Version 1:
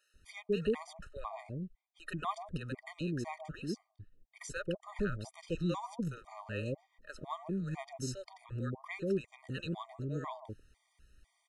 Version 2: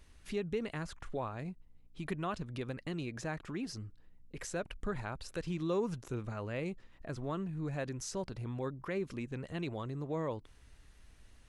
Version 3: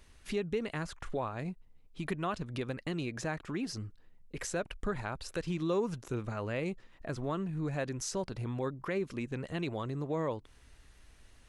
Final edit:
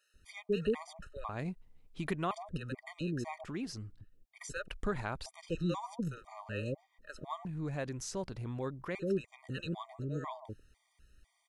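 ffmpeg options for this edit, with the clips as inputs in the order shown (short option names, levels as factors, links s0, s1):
-filter_complex "[2:a]asplit=2[s0][s1];[1:a]asplit=2[s2][s3];[0:a]asplit=5[s4][s5][s6][s7][s8];[s4]atrim=end=1.292[s9];[s0]atrim=start=1.288:end=2.312[s10];[s5]atrim=start=2.308:end=3.442[s11];[s2]atrim=start=3.438:end=4.012[s12];[s6]atrim=start=4.008:end=4.682[s13];[s1]atrim=start=4.678:end=5.262[s14];[s7]atrim=start=5.258:end=7.452[s15];[s3]atrim=start=7.448:end=8.952[s16];[s8]atrim=start=8.948[s17];[s9][s10]acrossfade=d=0.004:c1=hsin:c2=hsin[s18];[s18][s11]acrossfade=d=0.004:c1=hsin:c2=hsin[s19];[s19][s12]acrossfade=d=0.004:c1=hsin:c2=hsin[s20];[s20][s13]acrossfade=d=0.004:c1=hsin:c2=hsin[s21];[s21][s14]acrossfade=d=0.004:c1=hsin:c2=hsin[s22];[s22][s15]acrossfade=d=0.004:c1=hsin:c2=hsin[s23];[s23][s16]acrossfade=d=0.004:c1=hsin:c2=hsin[s24];[s24][s17]acrossfade=d=0.004:c1=hsin:c2=hsin"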